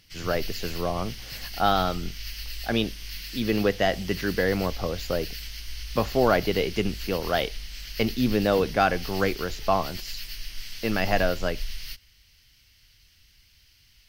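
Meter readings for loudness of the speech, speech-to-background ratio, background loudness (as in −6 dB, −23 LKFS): −26.5 LKFS, 10.5 dB, −37.0 LKFS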